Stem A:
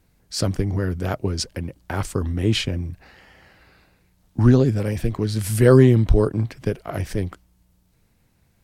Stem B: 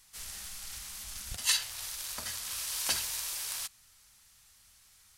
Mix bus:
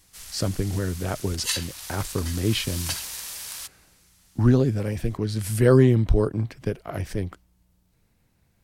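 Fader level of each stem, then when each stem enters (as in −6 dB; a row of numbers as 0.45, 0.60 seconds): −3.5, +1.0 decibels; 0.00, 0.00 seconds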